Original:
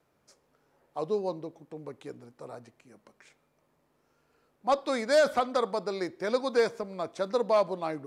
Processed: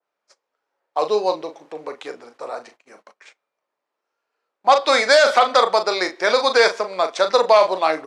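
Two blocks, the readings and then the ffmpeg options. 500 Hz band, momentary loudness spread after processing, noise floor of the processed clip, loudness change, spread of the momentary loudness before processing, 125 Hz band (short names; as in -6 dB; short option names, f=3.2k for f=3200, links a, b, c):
+10.0 dB, 20 LU, -82 dBFS, +11.5 dB, 20 LU, n/a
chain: -filter_complex "[0:a]asplit=2[a][b];[b]adelay=38,volume=-9dB[c];[a][c]amix=inputs=2:normalize=0,agate=range=-22dB:threshold=-56dB:ratio=16:detection=peak,highpass=610,lowpass=5.9k,alimiter=level_in=19dB:limit=-1dB:release=50:level=0:latency=1,adynamicequalizer=threshold=0.0501:dfrequency=1900:dqfactor=0.7:tfrequency=1900:tqfactor=0.7:attack=5:release=100:ratio=0.375:range=2:mode=boostabove:tftype=highshelf,volume=-3dB"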